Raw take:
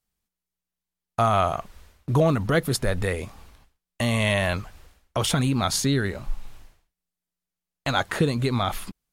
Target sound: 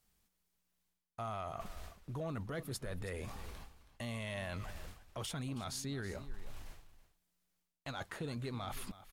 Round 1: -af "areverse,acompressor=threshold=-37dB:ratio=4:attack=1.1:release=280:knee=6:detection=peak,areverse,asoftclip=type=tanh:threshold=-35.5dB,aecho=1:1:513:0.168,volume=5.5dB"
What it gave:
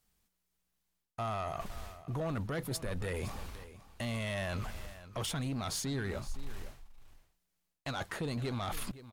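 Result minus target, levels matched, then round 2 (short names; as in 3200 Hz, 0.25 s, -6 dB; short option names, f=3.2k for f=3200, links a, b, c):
echo 0.19 s late; compressor: peak gain reduction -7 dB
-af "areverse,acompressor=threshold=-46.5dB:ratio=4:attack=1.1:release=280:knee=6:detection=peak,areverse,asoftclip=type=tanh:threshold=-35.5dB,aecho=1:1:323:0.168,volume=5.5dB"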